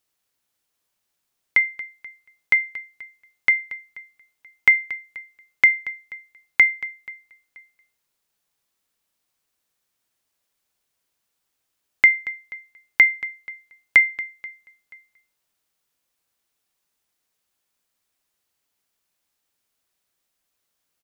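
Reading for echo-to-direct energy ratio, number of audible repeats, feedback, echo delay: −22.5 dB, 2, 33%, 482 ms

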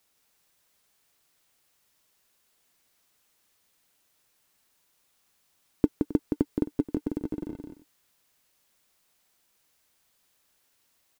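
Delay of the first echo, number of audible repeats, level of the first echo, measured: 170 ms, 2, −5.0 dB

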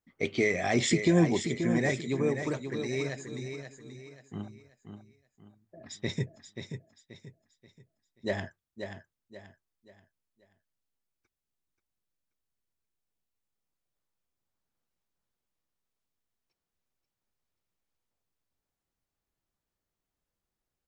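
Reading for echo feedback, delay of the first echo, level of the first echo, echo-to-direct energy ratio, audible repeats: 35%, 532 ms, −8.0 dB, −7.5 dB, 3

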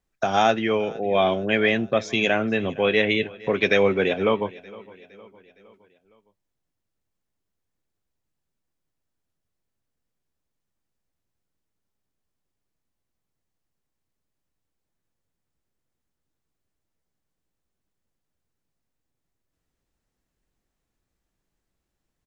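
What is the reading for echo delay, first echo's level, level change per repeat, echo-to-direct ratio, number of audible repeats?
462 ms, −21.5 dB, −6.0 dB, −20.0 dB, 3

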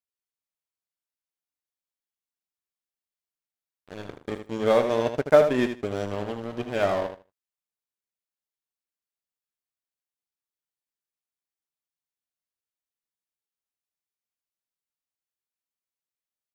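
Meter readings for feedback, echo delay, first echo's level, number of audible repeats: 17%, 78 ms, −8.5 dB, 2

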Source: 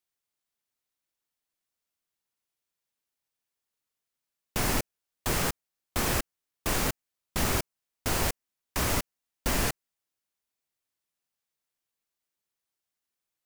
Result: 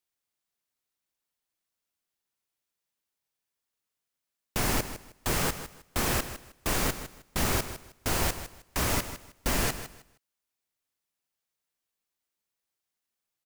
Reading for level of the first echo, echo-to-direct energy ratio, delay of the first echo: −12.0 dB, −12.0 dB, 156 ms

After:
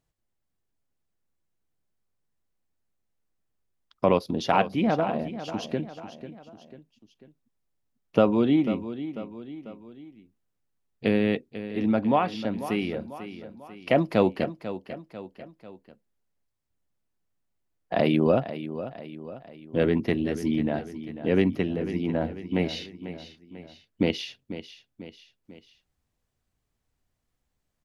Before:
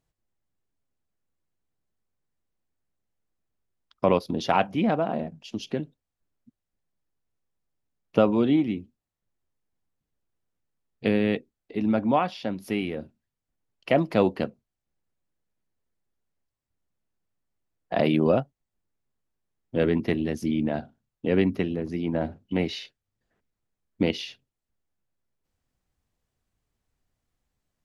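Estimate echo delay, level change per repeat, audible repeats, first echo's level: 494 ms, −6.0 dB, 3, −12.5 dB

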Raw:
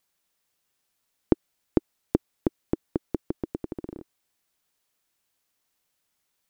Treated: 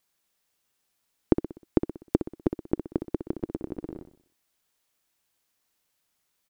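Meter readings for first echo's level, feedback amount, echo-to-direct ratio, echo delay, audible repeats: −9.5 dB, 45%, −8.5 dB, 62 ms, 4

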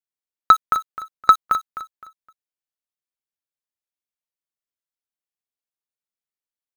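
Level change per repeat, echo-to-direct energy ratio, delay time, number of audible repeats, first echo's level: −11.0 dB, −12.5 dB, 258 ms, 3, −13.0 dB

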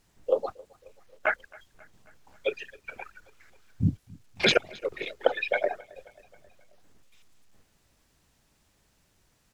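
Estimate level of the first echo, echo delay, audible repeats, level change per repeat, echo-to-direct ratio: −24.0 dB, 268 ms, 3, −4.5 dB, −22.5 dB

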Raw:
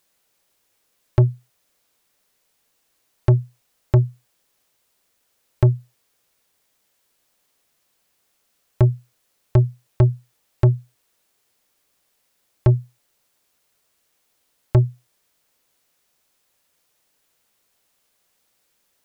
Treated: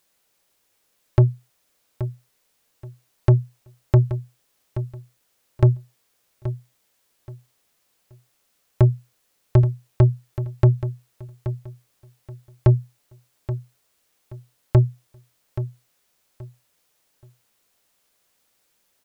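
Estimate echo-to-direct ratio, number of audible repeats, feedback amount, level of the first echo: −11.5 dB, 2, 25%, −12.0 dB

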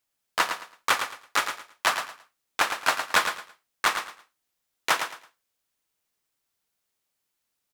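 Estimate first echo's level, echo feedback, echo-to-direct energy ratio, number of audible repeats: −8.0 dB, 24%, −7.5 dB, 3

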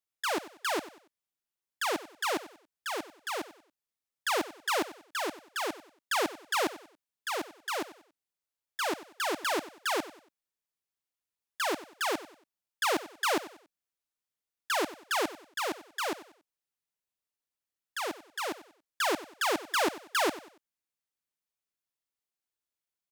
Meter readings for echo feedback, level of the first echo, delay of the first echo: 34%, −16.0 dB, 94 ms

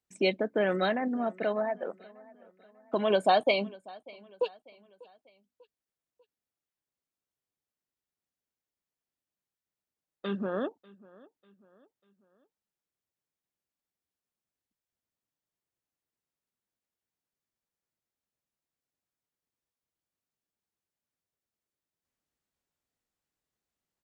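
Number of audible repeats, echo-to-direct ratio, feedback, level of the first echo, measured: 2, −22.0 dB, 44%, −23.0 dB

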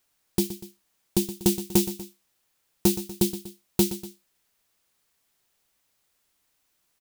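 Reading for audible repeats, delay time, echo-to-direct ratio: 2, 121 ms, −12.0 dB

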